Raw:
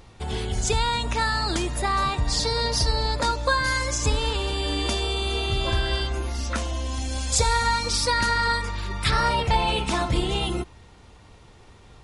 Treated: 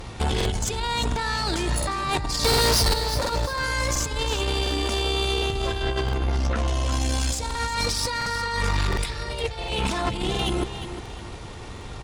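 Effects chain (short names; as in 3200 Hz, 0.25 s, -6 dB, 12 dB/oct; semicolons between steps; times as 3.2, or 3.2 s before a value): 5.82–6.68 LPF 1700 Hz 6 dB/oct; negative-ratio compressor -31 dBFS, ratio -1; 2.44–2.94 sample leveller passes 5; 8.97–9.72 fixed phaser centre 470 Hz, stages 4; tube stage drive 26 dB, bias 0.55; feedback echo 0.355 s, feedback 37%, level -11 dB; crackling interface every 0.71 s, samples 2048, repeat, from 0.36; gain +8.5 dB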